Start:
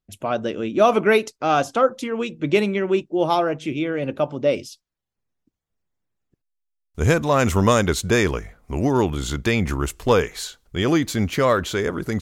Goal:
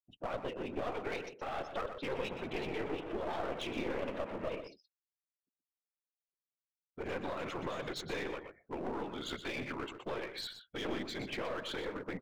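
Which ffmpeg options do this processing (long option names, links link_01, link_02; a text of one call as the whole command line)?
ffmpeg -i in.wav -filter_complex "[0:a]asettb=1/sr,asplit=3[link_01][link_02][link_03];[link_01]atrim=end=2.034[link_04];[link_02]atrim=start=2.03:end=4.48,asetpts=PTS-STARTPTS,afade=type=in:duration=0.004:curve=qsin,afade=type=out:start_time=2.446:duration=0.004:curve=qsin,aeval=exprs='val(0)+0.5*0.0531*sgn(val(0))':channel_layout=same[link_05];[link_03]atrim=start=4.476[link_06];[link_04][link_05]acrossfade=duration=0.004:curve1=hsin:curve2=qsin[link_07];[link_07][link_06]acrossfade=duration=0.004:curve1=qsin:curve2=hsin,lowpass=3200,afftdn=noise_reduction=33:noise_floor=-41,highpass=540,equalizer=frequency=1300:width=0.43:gain=-9.5,alimiter=level_in=1dB:limit=-24dB:level=0:latency=1:release=77,volume=-1dB,acompressor=threshold=-42dB:ratio=2,afftfilt=real='hypot(re,im)*cos(2*PI*random(0))':imag='hypot(re,im)*sin(2*PI*random(1))':win_size=512:overlap=0.75,aeval=exprs='clip(val(0),-1,0.00299)':channel_layout=same,asplit=2[link_08][link_09];[link_09]adelay=122.4,volume=-9dB,highshelf=frequency=4000:gain=-2.76[link_10];[link_08][link_10]amix=inputs=2:normalize=0,volume=10dB" out.wav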